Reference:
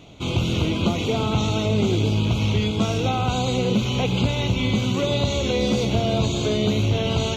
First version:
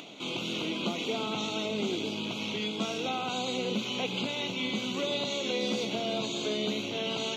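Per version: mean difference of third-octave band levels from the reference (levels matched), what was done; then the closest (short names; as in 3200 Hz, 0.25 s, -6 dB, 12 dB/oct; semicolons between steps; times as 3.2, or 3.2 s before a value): 4.5 dB: HPF 200 Hz 24 dB/oct; bell 3200 Hz +5 dB 1.7 oct; upward compressor, threshold -29 dBFS; gain -9 dB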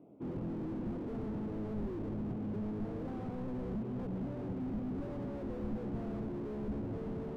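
8.5 dB: ladder band-pass 350 Hz, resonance 25%; air absorption 430 m; slew limiter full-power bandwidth 2.6 Hz; gain +3.5 dB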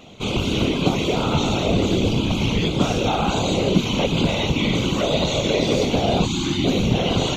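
3.0 dB: whisperiser; low shelf 84 Hz -8 dB; spectral gain 6.25–6.65, 380–790 Hz -24 dB; gain +3 dB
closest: third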